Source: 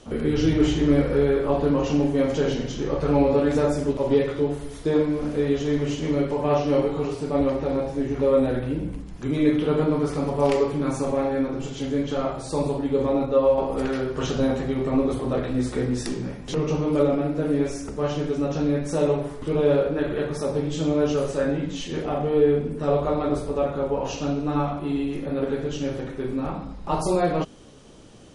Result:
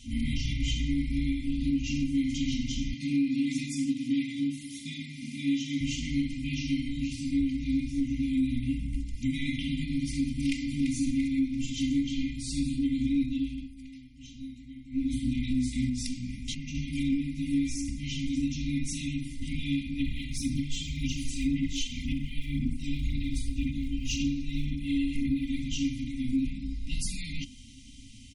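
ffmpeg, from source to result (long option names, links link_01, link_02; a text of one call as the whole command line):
ffmpeg -i in.wav -filter_complex "[0:a]asettb=1/sr,asplit=3[link_01][link_02][link_03];[link_01]atrim=end=2.934[link_04];[link_02]atrim=start=2.93:end=5.81,asetpts=PTS-STARTPTS,afade=type=in:duration=0.004:curve=qsin,afade=type=out:start_time=2.876:duration=0.004:curve=qsin,highpass=frequency=150:width=0.5412,highpass=frequency=150:width=1.3066[link_05];[link_03]atrim=start=5.806[link_06];[link_04][link_05]acrossfade=duration=0.004:curve1=hsin:curve2=qsin[link_07];[link_07][link_06]acrossfade=duration=0.004:curve1=qsin:curve2=hsin,asplit=2[link_08][link_09];[link_09]afade=type=in:start_time=10.29:duration=0.01,afade=type=out:start_time=10.93:duration=0.01,aecho=0:1:340|680|1020|1360|1700:0.316228|0.142302|0.0640361|0.0288163|0.0129673[link_10];[link_08][link_10]amix=inputs=2:normalize=0,asettb=1/sr,asplit=3[link_11][link_12][link_13];[link_11]atrim=end=15.894[link_14];[link_12]atrim=start=15.89:end=16.75,asetpts=PTS-STARTPTS,afade=type=in:duration=0.004:curve=qsin,afade=type=out:start_time=0.856:duration=0.004:curve=qsin,acompressor=threshold=-30dB:ratio=2:attack=3.2:release=140:knee=1:detection=peak[link_15];[link_13]atrim=start=16.746[link_16];[link_14][link_15]acrossfade=duration=0.004:curve1=hsin:curve2=qsin[link_17];[link_17][link_16]acrossfade=duration=0.004:curve1=qsin:curve2=hsin,asettb=1/sr,asplit=3[link_18][link_19][link_20];[link_18]atrim=end=20.004[link_21];[link_19]atrim=start=20:end=25.62,asetpts=PTS-STARTPTS,afade=type=in:duration=0.004:curve=qsin,afade=type=out:start_time=5.616:duration=0.004:curve=qsin,aphaser=in_gain=1:out_gain=1:delay=2.6:decay=0.48:speed=1.9:type=sinusoidal[link_22];[link_20]atrim=start=25.616[link_23];[link_21][link_22]acrossfade=duration=0.004:curve1=hsin:curve2=qsin[link_24];[link_24][link_23]acrossfade=duration=0.004:curve1=qsin:curve2=hsin,asplit=3[link_25][link_26][link_27];[link_25]atrim=end=13.74,asetpts=PTS-STARTPTS,afade=type=out:start_time=13.36:duration=0.38:silence=0.105925[link_28];[link_26]atrim=start=13.74:end=14.9,asetpts=PTS-STARTPTS,volume=-19.5dB[link_29];[link_27]atrim=start=14.9,asetpts=PTS-STARTPTS,afade=type=in:duration=0.38:silence=0.105925[link_30];[link_28][link_29][link_30]concat=n=3:v=0:a=1,afftfilt=real='re*(1-between(b*sr/4096,280,1900))':imag='im*(1-between(b*sr/4096,280,1900))':win_size=4096:overlap=0.75,aecho=1:1:2.9:0.84,alimiter=limit=-19.5dB:level=0:latency=1:release=293" out.wav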